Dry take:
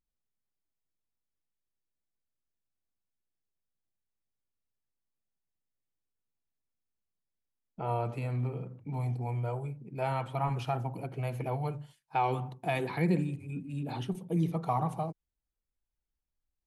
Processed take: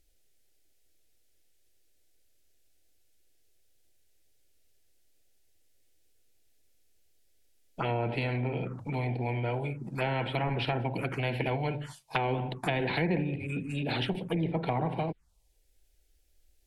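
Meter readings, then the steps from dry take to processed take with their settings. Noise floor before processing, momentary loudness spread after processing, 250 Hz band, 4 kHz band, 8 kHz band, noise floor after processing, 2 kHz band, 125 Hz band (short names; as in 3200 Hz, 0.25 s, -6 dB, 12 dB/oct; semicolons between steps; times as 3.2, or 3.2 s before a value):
under -85 dBFS, 5 LU, +2.0 dB, +11.0 dB, n/a, -67 dBFS, +8.0 dB, +0.5 dB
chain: treble ducked by the level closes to 1200 Hz, closed at -26.5 dBFS; envelope phaser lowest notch 180 Hz, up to 1200 Hz, full sweep at -32.5 dBFS; spectral compressor 2:1; gain +7 dB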